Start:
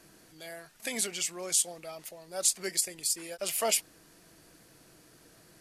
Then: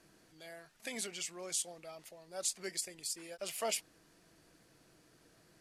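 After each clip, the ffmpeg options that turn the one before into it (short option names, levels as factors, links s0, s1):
-af "highshelf=f=11000:g=-11.5,volume=0.473"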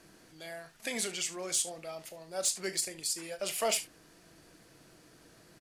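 -filter_complex "[0:a]asplit=2[s0][s1];[s1]aecho=0:1:37|73:0.237|0.141[s2];[s0][s2]amix=inputs=2:normalize=0,asoftclip=type=tanh:threshold=0.0501,volume=2.11"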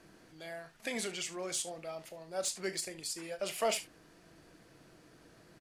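-af "highshelf=f=4200:g=-8"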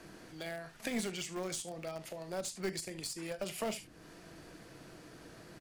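-filter_complex "[0:a]acrossover=split=270[s0][s1];[s1]acompressor=threshold=0.00398:ratio=4[s2];[s0][s2]amix=inputs=2:normalize=0,asplit=2[s3][s4];[s4]acrusher=bits=4:dc=4:mix=0:aa=0.000001,volume=0.335[s5];[s3][s5]amix=inputs=2:normalize=0,volume=2.11"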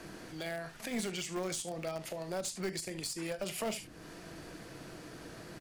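-af "alimiter=level_in=2.37:limit=0.0631:level=0:latency=1:release=162,volume=0.422,volume=1.78"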